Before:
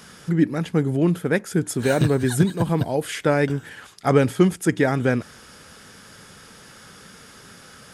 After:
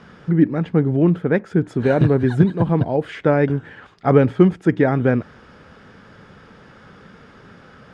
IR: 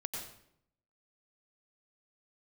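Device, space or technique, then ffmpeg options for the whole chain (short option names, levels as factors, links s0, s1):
phone in a pocket: -af "lowpass=3400,highshelf=f=2000:g=-10.5,volume=1.58"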